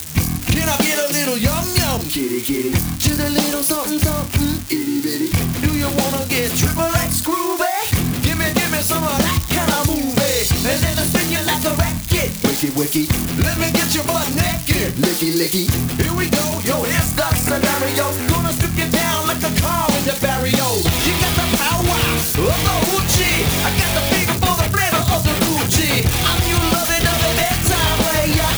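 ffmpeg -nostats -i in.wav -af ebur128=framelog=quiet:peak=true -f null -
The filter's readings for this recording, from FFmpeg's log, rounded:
Integrated loudness:
  I:         -16.8 LUFS
  Threshold: -26.8 LUFS
Loudness range:
  LRA:         2.6 LU
  Threshold: -36.9 LUFS
  LRA low:   -18.1 LUFS
  LRA high:  -15.6 LUFS
True peak:
  Peak:       -4.8 dBFS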